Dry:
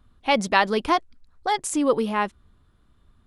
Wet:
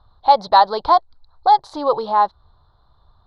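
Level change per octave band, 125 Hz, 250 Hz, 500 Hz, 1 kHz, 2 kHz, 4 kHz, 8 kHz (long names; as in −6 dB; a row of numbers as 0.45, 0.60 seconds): can't be measured, −8.0 dB, +3.0 dB, +10.5 dB, −6.5 dB, +2.0 dB, below −20 dB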